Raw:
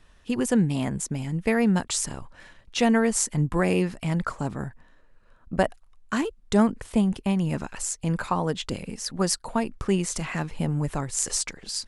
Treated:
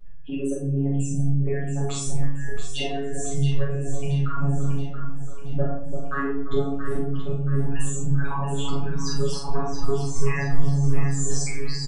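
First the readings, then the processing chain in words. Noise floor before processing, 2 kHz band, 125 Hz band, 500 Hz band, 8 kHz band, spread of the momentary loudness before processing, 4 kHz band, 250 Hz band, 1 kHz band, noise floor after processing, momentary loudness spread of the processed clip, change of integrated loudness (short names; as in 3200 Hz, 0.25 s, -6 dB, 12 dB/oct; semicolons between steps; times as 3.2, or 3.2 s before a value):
-56 dBFS, -2.5 dB, +5.0 dB, -1.5 dB, -4.5 dB, 9 LU, -2.0 dB, -4.5 dB, -3.0 dB, -28 dBFS, 6 LU, -1.5 dB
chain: formant sharpening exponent 3; LPF 3800 Hz 6 dB/oct; compressor, threshold -30 dBFS, peak gain reduction 15 dB; robotiser 140 Hz; doubler 44 ms -3 dB; on a send: echo with dull and thin repeats by turns 0.338 s, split 1000 Hz, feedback 71%, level -6 dB; on the sum: shoebox room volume 82 m³, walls mixed, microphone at 1.4 m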